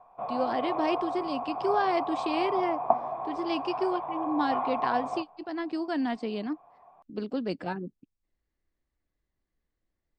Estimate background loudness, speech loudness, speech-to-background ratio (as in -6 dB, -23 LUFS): -32.5 LUFS, -31.5 LUFS, 1.0 dB